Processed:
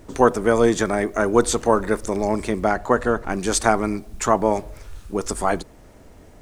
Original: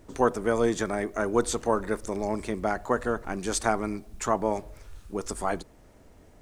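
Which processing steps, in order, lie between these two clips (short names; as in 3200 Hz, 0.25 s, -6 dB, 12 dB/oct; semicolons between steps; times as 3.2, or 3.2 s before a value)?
2.67–3.3 high shelf 8200 Hz -6.5 dB; gain +7.5 dB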